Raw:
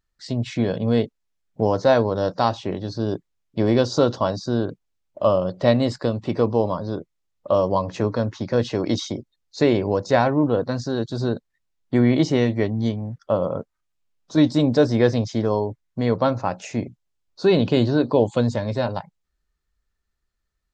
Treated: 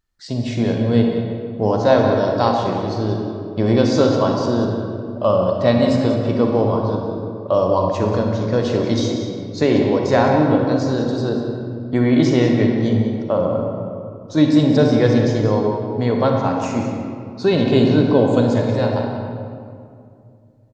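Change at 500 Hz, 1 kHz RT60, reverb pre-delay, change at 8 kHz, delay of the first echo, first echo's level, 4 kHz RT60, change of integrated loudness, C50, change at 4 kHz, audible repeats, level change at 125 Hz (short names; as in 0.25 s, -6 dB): +4.0 dB, 2.3 s, 35 ms, n/a, 0.188 s, -12.5 dB, 1.3 s, +4.0 dB, 1.5 dB, +3.0 dB, 1, +5.0 dB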